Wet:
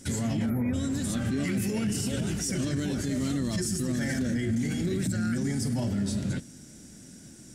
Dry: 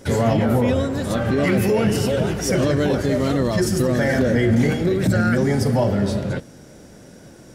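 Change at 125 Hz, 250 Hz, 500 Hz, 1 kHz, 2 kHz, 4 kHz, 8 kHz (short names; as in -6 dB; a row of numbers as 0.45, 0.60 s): -9.5, -7.5, -17.0, -17.0, -11.5, -7.0, -1.5 dB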